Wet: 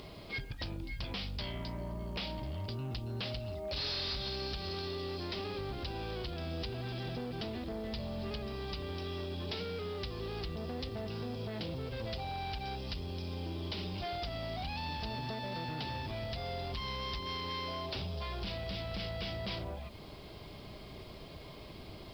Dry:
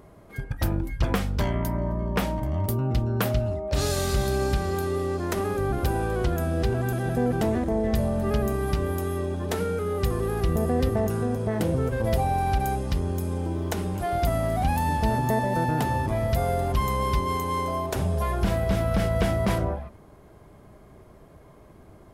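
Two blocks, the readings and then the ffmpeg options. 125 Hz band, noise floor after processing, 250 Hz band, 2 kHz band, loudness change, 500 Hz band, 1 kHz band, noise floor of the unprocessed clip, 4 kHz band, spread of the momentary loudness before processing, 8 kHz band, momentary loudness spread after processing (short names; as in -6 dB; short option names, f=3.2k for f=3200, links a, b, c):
-14.5 dB, -49 dBFS, -14.5 dB, -9.5 dB, -13.0 dB, -14.0 dB, -14.5 dB, -50 dBFS, 0.0 dB, 4 LU, -21.5 dB, 5 LU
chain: -af "acompressor=threshold=-37dB:ratio=8,aexciter=amount=7.3:drive=5.1:freq=2.4k,aresample=11025,asoftclip=type=hard:threshold=-35dB,aresample=44100,acrusher=bits=10:mix=0:aa=0.000001,volume=1dB"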